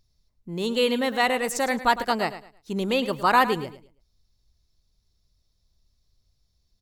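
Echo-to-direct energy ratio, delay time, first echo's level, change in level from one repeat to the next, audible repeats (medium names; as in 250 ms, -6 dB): -13.0 dB, 108 ms, -13.5 dB, -11.5 dB, 2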